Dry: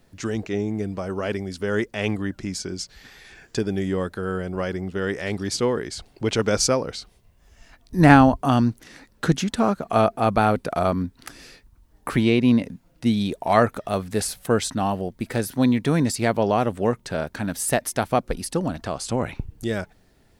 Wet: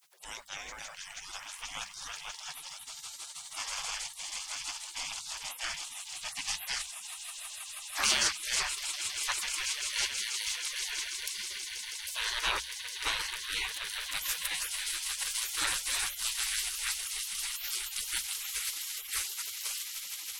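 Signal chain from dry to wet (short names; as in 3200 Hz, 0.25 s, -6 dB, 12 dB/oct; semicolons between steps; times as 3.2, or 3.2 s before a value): swelling echo 0.161 s, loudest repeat 8, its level -13 dB; spectral gate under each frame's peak -30 dB weak; notches 60/120/180/240 Hz; gain +5.5 dB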